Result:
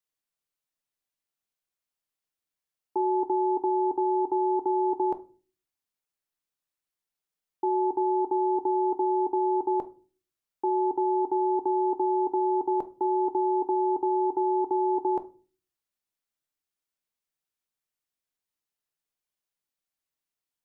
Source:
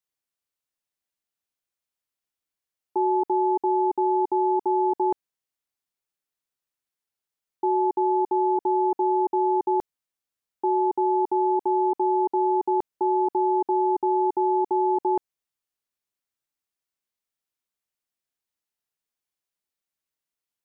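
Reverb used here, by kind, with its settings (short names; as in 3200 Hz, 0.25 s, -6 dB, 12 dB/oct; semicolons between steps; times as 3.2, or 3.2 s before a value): shoebox room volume 210 m³, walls furnished, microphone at 0.49 m; gain -2 dB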